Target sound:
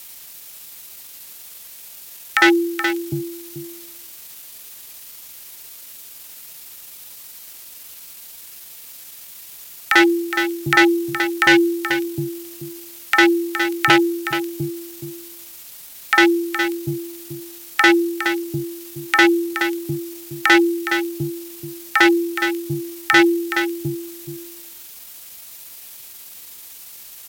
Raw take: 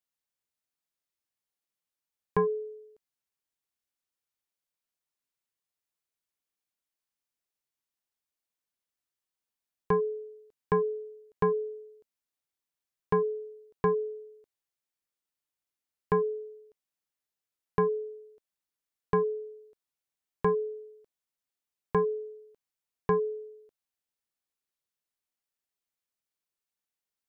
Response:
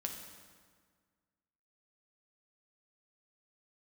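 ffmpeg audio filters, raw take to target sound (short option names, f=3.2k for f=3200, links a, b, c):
-filter_complex "[0:a]highpass=f=62:w=0.5412,highpass=f=62:w=1.3066,aemphasis=mode=production:type=50fm,acrossover=split=150|880[a][b][c];[a]acompressor=threshold=-54dB:ratio=8[d];[d][b][c]amix=inputs=3:normalize=0,acrossover=split=300|1500[e][f][g];[f]adelay=50[h];[e]adelay=750[i];[i][h][g]amix=inputs=3:normalize=0,asoftclip=type=hard:threshold=-25dB,aexciter=amount=14.1:drive=7.7:freq=2.1k,asplit=2[j][k];[k]highpass=f=720:p=1,volume=19dB,asoftclip=type=tanh:threshold=0dB[l];[j][l]amix=inputs=2:normalize=0,lowpass=f=1.8k:p=1,volume=-6dB,acrusher=bits=7:mix=0:aa=0.5,asplit=2[m][n];[n]aecho=0:1:424:0.316[o];[m][o]amix=inputs=2:normalize=0,asetrate=35002,aresample=44100,atempo=1.25992,alimiter=level_in=9dB:limit=-1dB:release=50:level=0:latency=1,volume=-1dB"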